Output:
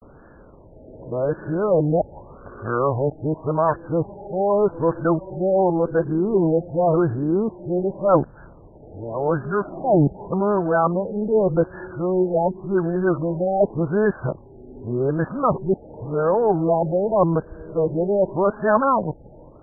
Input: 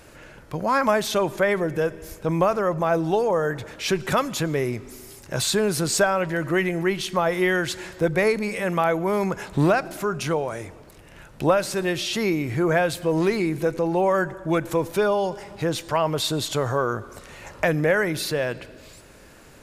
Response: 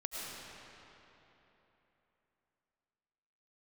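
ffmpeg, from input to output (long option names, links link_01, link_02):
-af "areverse,adynamicsmooth=sensitivity=8:basefreq=1900,afftfilt=real='re*lt(b*sr/1024,860*pow(1800/860,0.5+0.5*sin(2*PI*0.87*pts/sr)))':imag='im*lt(b*sr/1024,860*pow(1800/860,0.5+0.5*sin(2*PI*0.87*pts/sr)))':win_size=1024:overlap=0.75,volume=3dB"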